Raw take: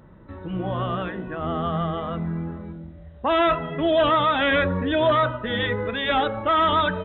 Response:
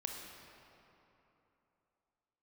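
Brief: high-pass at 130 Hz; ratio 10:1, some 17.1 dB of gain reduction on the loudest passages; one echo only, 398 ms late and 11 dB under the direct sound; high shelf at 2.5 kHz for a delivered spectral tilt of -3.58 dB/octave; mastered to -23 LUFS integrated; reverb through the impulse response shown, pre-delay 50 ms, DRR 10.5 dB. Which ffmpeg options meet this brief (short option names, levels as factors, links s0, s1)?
-filter_complex "[0:a]highpass=130,highshelf=f=2500:g=4,acompressor=threshold=0.02:ratio=10,aecho=1:1:398:0.282,asplit=2[s0][s1];[1:a]atrim=start_sample=2205,adelay=50[s2];[s1][s2]afir=irnorm=-1:irlink=0,volume=0.299[s3];[s0][s3]amix=inputs=2:normalize=0,volume=4.73"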